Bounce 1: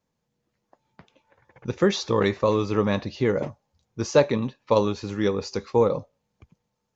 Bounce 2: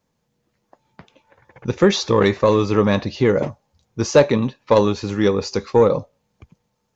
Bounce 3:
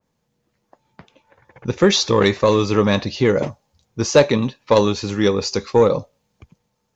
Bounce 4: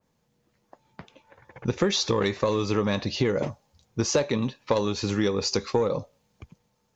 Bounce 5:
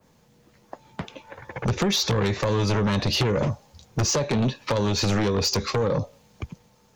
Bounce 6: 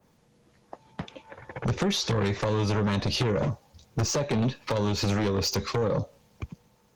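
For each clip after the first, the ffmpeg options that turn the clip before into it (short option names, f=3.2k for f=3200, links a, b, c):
-af "acontrast=73"
-af "adynamicequalizer=threshold=0.0224:dfrequency=2400:dqfactor=0.7:tfrequency=2400:tqfactor=0.7:attack=5:release=100:ratio=0.375:range=3:mode=boostabove:tftype=highshelf"
-af "acompressor=threshold=-21dB:ratio=6"
-filter_complex "[0:a]acrossover=split=170[a][b];[b]acompressor=threshold=-30dB:ratio=8[c];[a][c]amix=inputs=2:normalize=0,aeval=exprs='0.126*(cos(1*acos(clip(val(0)/0.126,-1,1)))-cos(1*PI/2))+0.0562*(cos(5*acos(clip(val(0)/0.126,-1,1)))-cos(5*PI/2))':c=same,volume=2dB"
-af "volume=-2.5dB" -ar 48000 -c:a libopus -b:a 24k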